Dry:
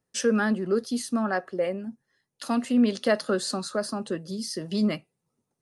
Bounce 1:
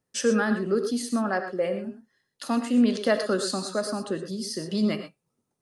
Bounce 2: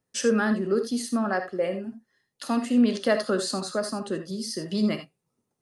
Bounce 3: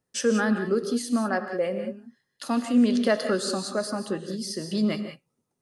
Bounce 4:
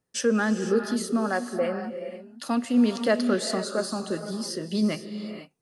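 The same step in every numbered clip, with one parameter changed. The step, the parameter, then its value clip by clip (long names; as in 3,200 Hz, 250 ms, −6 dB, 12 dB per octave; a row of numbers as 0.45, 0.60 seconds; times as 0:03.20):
reverb whose tail is shaped and stops, gate: 140, 100, 210, 520 milliseconds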